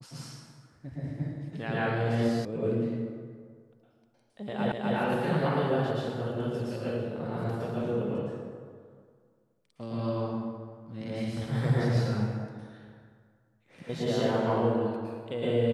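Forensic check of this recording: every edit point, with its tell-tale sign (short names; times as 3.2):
2.45 sound cut off
4.72 repeat of the last 0.25 s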